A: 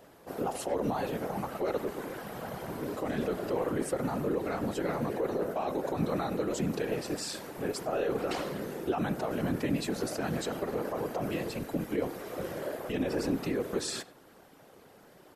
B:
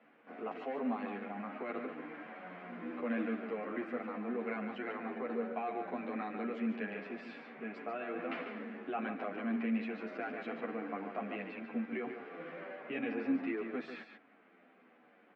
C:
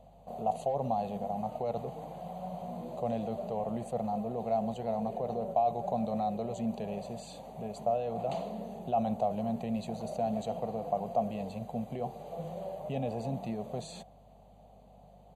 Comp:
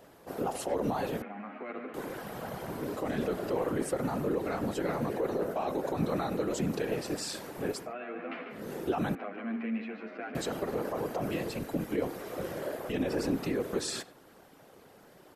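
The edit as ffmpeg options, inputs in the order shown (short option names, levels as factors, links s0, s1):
-filter_complex "[1:a]asplit=3[s0][s1][s2];[0:a]asplit=4[s3][s4][s5][s6];[s3]atrim=end=1.222[s7];[s0]atrim=start=1.218:end=1.942[s8];[s4]atrim=start=1.938:end=7.95[s9];[s1]atrim=start=7.71:end=8.73[s10];[s5]atrim=start=8.49:end=9.152[s11];[s2]atrim=start=9.148:end=10.352[s12];[s6]atrim=start=10.348[s13];[s7][s8]acrossfade=d=0.004:c1=hsin:c2=hsin[s14];[s14][s9]acrossfade=d=0.004:c1=hsin:c2=hsin[s15];[s15][s10]acrossfade=d=0.24:c1=tri:c2=tri[s16];[s16][s11]acrossfade=d=0.24:c1=tri:c2=tri[s17];[s17][s12]acrossfade=d=0.004:c1=hsin:c2=hsin[s18];[s18][s13]acrossfade=d=0.004:c1=hsin:c2=hsin"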